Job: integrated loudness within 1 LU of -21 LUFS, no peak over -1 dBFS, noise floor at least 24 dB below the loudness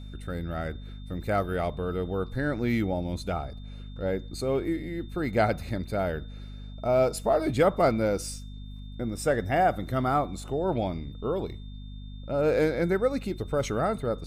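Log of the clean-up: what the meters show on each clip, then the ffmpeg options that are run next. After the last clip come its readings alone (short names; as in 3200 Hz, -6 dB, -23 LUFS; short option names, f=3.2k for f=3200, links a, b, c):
hum 50 Hz; harmonics up to 250 Hz; hum level -38 dBFS; steady tone 3600 Hz; tone level -55 dBFS; loudness -28.5 LUFS; peak -9.0 dBFS; loudness target -21.0 LUFS
-> -af "bandreject=f=50:t=h:w=4,bandreject=f=100:t=h:w=4,bandreject=f=150:t=h:w=4,bandreject=f=200:t=h:w=4,bandreject=f=250:t=h:w=4"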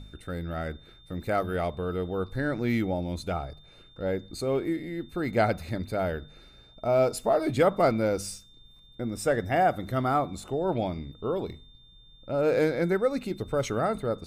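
hum none; steady tone 3600 Hz; tone level -55 dBFS
-> -af "bandreject=f=3.6k:w=30"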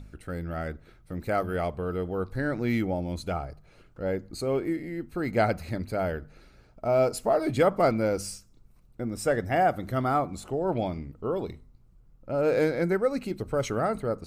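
steady tone none; loudness -28.5 LUFS; peak -10.0 dBFS; loudness target -21.0 LUFS
-> -af "volume=7.5dB"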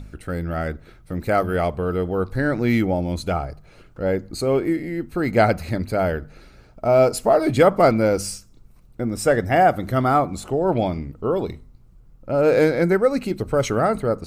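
loudness -21.0 LUFS; peak -2.5 dBFS; noise floor -50 dBFS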